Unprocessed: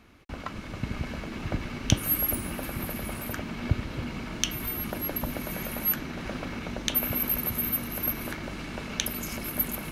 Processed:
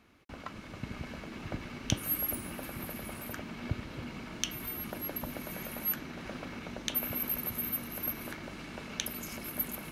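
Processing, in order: bass shelf 74 Hz -8.5 dB; trim -6 dB

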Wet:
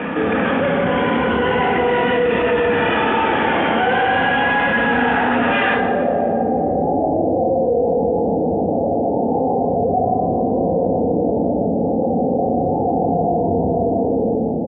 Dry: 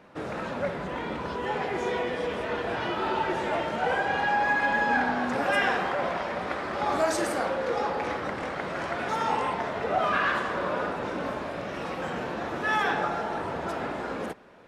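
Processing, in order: drifting ripple filter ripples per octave 2, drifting -0.35 Hz, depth 8 dB; band-stop 620 Hz, Q 16; delay 152 ms -5 dB; saturation -25 dBFS, distortion -12 dB; steep low-pass 3.4 kHz 72 dB/octave, from 5.74 s 790 Hz; reverberation RT60 1.9 s, pre-delay 3 ms, DRR 2.5 dB; level flattener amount 70%

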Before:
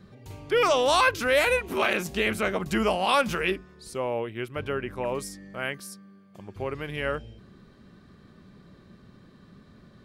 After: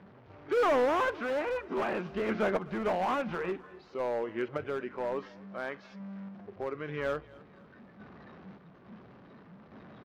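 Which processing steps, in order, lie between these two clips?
one-bit delta coder 32 kbps, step -35.5 dBFS; high-pass 180 Hz 6 dB/octave; spectral noise reduction 11 dB; low-pass 1.6 kHz 12 dB/octave; in parallel at -2 dB: compression 6:1, threshold -38 dBFS, peak gain reduction 16.5 dB; on the sum: hard clipper -23 dBFS, distortion -12 dB; random-step tremolo; on a send: feedback delay 256 ms, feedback 46%, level -23 dB

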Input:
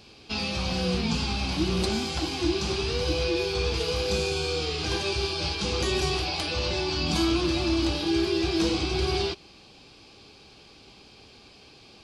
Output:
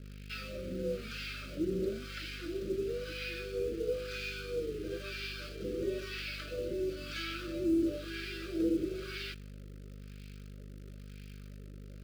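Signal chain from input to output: wah-wah 1 Hz 330–2000 Hz, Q 2; hum 50 Hz, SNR 10 dB; in parallel at -9 dB: bit crusher 7-bit; on the sum: elliptic band-stop 590–1300 Hz, stop band 40 dB; trim -3.5 dB

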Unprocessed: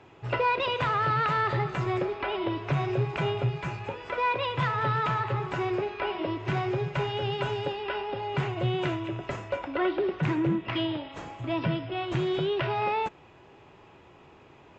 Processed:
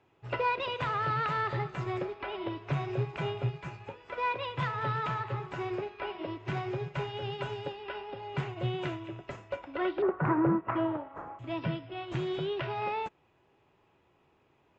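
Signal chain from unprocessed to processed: 10.02–11.39 s: FFT filter 190 Hz 0 dB, 1.3 kHz +11 dB, 3.5 kHz -20 dB; upward expansion 1.5:1, over -45 dBFS; trim -2.5 dB

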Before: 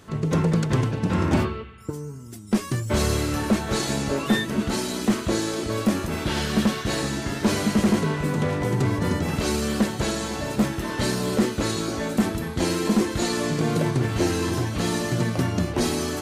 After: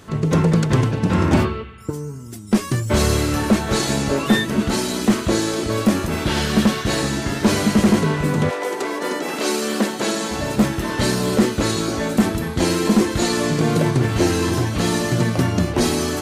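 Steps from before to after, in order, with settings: 8.49–10.30 s: high-pass 420 Hz -> 180 Hz 24 dB/octave; trim +5 dB

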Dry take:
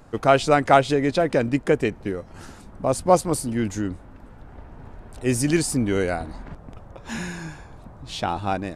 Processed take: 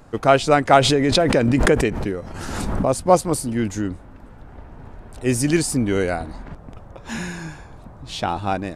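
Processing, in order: 0.81–2.89 s: swell ahead of each attack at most 27 dB/s; trim +2 dB

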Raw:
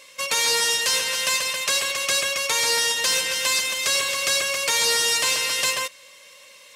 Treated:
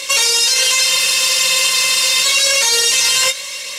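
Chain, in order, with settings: peaking EQ 5.7 kHz +9.5 dB 2.7 oct; plain phase-vocoder stretch 0.56×; chorus voices 2, 0.53 Hz, delay 22 ms, depth 1.5 ms; loudness maximiser +24.5 dB; spectral freeze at 0.88 s, 1.37 s; trim -4 dB

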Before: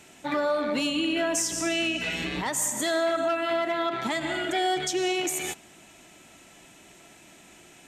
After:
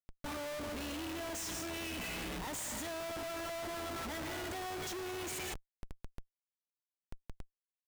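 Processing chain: octave divider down 2 oct, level -3 dB; compression 4:1, threshold -29 dBFS, peak gain reduction 7 dB; Schmitt trigger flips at -40.5 dBFS; trim -7 dB

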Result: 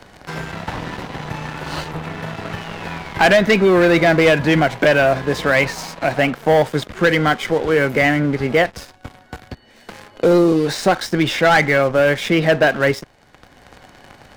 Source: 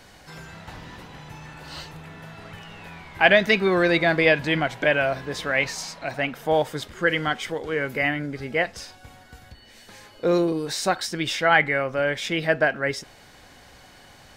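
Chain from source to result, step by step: treble shelf 2.8 kHz -11 dB; waveshaping leveller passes 3; three bands compressed up and down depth 40%

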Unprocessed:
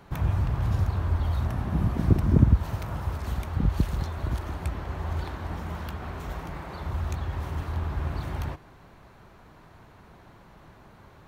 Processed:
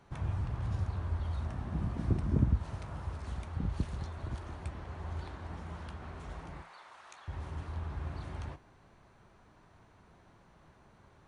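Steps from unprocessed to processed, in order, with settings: 6.62–7.28 s: high-pass 930 Hz 12 dB/octave; flange 0.22 Hz, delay 8.3 ms, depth 7 ms, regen -70%; trim -5 dB; MP2 128 kbps 24 kHz

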